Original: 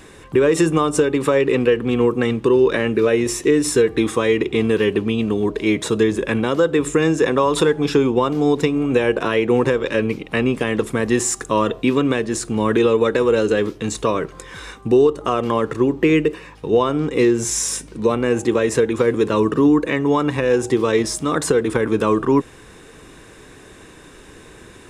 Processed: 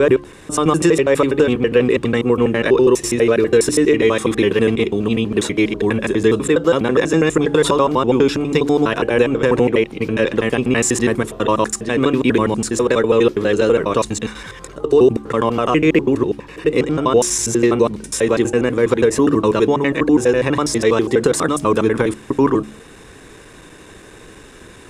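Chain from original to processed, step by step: slices in reverse order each 82 ms, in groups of 6; de-hum 71.61 Hz, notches 5; gain +2.5 dB

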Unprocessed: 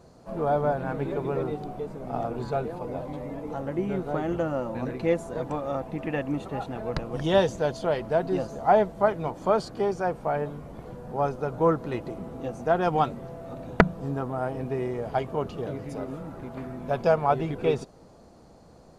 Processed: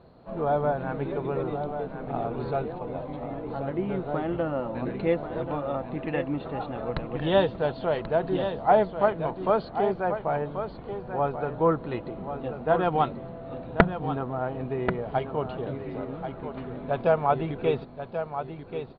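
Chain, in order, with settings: Chebyshev low-pass 4200 Hz, order 6; echo 1.085 s -9 dB

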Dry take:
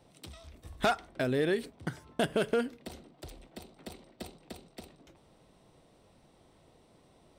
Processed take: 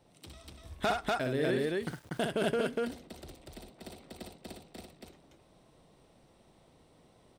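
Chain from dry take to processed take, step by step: 1.67–2.13 sample gate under -46 dBFS; loudspeakers at several distances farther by 21 m -5 dB, 83 m -1 dB; gain -3.5 dB

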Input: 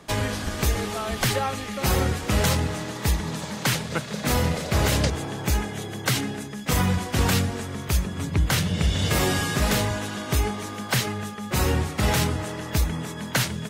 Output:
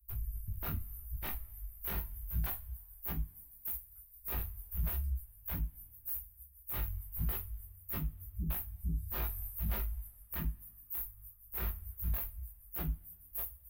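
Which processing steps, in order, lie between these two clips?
inverse Chebyshev band-stop 150–7000 Hz, stop band 60 dB; passive tone stack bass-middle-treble 10-0-10; sine folder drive 14 dB, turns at -28 dBFS; chorus 0.8 Hz, delay 18 ms, depth 2.7 ms; two-slope reverb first 0.23 s, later 1.8 s, from -27 dB, DRR 5 dB; gain -2.5 dB

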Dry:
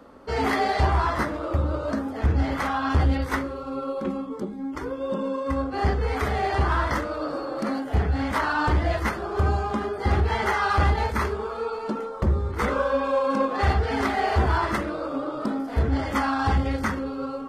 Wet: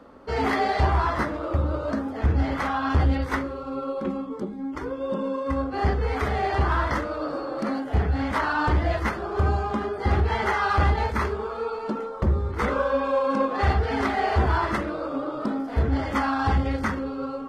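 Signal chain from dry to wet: high shelf 7500 Hz -9 dB

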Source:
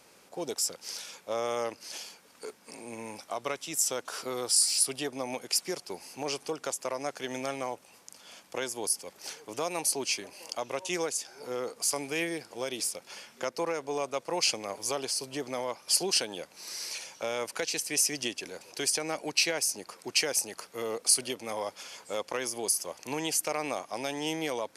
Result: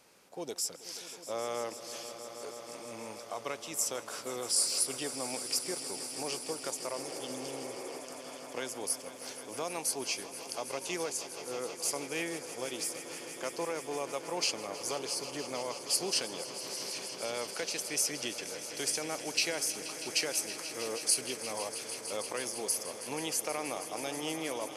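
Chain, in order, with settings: swelling echo 0.16 s, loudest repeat 5, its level -15 dB; spectral repair 7.04–7.97, 300–2600 Hz before; gain -4.5 dB

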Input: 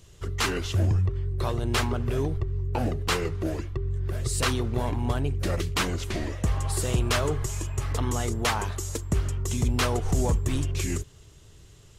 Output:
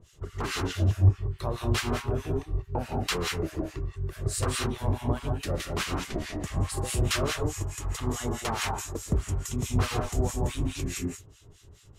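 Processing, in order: non-linear reverb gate 0.21 s rising, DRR 0.5 dB; harmonic tremolo 4.7 Hz, depth 100%, crossover 1200 Hz

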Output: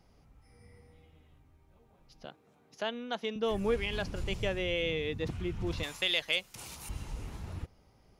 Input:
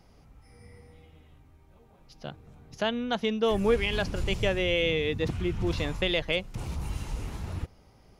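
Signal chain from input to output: 2.25–3.36 HPF 270 Hz 12 dB/oct; 5.83–6.89 tilt +4 dB/oct; gain -6 dB

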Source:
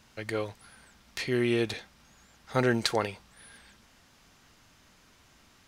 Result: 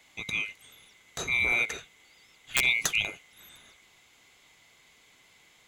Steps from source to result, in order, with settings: band-swap scrambler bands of 2000 Hz; wrapped overs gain 12.5 dB

